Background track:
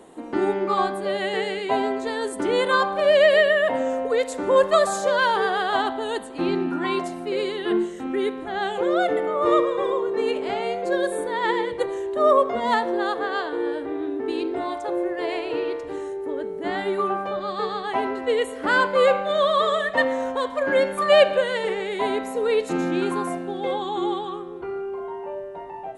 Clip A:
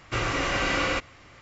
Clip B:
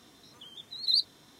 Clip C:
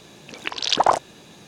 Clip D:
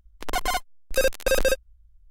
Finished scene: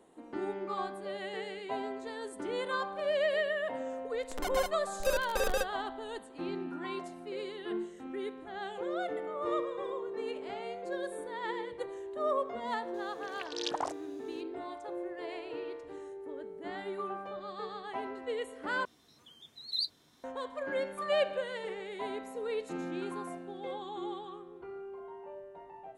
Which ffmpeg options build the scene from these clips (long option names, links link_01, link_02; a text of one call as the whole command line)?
ffmpeg -i bed.wav -i cue0.wav -i cue1.wav -i cue2.wav -i cue3.wav -filter_complex "[0:a]volume=-14dB[link_01];[3:a]highshelf=frequency=5600:gain=6.5[link_02];[2:a]asplit=2[link_03][link_04];[link_04]adelay=13,volume=-13.5dB[link_05];[link_03][link_05]amix=inputs=2:normalize=0[link_06];[link_01]asplit=2[link_07][link_08];[link_07]atrim=end=18.854[link_09];[link_06]atrim=end=1.39,asetpts=PTS-STARTPTS,volume=-8dB[link_10];[link_08]atrim=start=20.236[link_11];[4:a]atrim=end=2.1,asetpts=PTS-STARTPTS,volume=-10.5dB,afade=type=in:duration=0.004:curve=hsin,afade=type=out:start_time=2.096:duration=0.004:curve=hsin,adelay=180369S[link_12];[link_02]atrim=end=1.47,asetpts=PTS-STARTPTS,volume=-18dB,afade=type=in:duration=0.004:curve=hsin,afade=type=out:start_time=1.466:duration=0.004:curve=hsin,adelay=12940[link_13];[link_09][link_10]acrossfade=duration=0.004:curve1=hsin:curve2=hsin[link_14];[link_14][link_11]acrossfade=duration=0.004:curve1=hsin:curve2=hsin[link_15];[link_15][link_12][link_13]amix=inputs=3:normalize=0" out.wav